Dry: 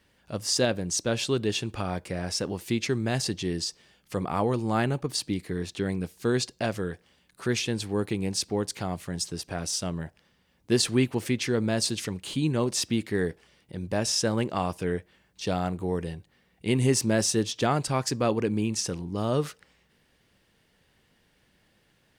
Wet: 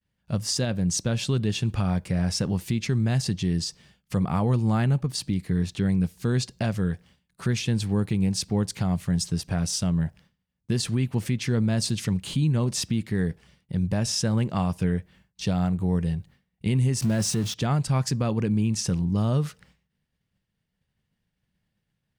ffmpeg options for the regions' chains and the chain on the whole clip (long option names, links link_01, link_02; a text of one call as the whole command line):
ffmpeg -i in.wav -filter_complex "[0:a]asettb=1/sr,asplit=3[link_01][link_02][link_03];[link_01]atrim=end=17.024[link_04];[link_02]atrim=start=17.02:end=17.54,asetpts=PTS-STARTPTS,afade=type=in:duration=0.004:curve=qsin,afade=type=out:start_time=0.516:duration=0.004:curve=qsin,aeval=exprs='val(0)+0.5*0.0316*sgn(val(0))':channel_layout=same,highpass=61[link_05];[link_03]atrim=start=17.536[link_06];[link_04][link_05]acrossfade=duration=0.004:curve1=hsin:curve2=qsin[link_07];[link_07][link_06]acrossfade=duration=0.004:curve1=qsin:curve2=hsin,agate=range=-33dB:threshold=-53dB:ratio=3:detection=peak,lowshelf=frequency=240:width_type=q:width=1.5:gain=8.5,alimiter=limit=-18dB:level=0:latency=1:release=309,volume=2dB" out.wav